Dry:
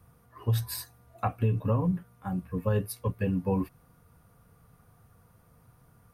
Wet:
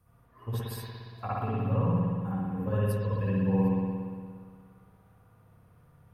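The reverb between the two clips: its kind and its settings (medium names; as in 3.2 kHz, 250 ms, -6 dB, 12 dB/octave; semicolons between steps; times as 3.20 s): spring tank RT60 2 s, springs 58 ms, chirp 65 ms, DRR -8.5 dB; trim -9 dB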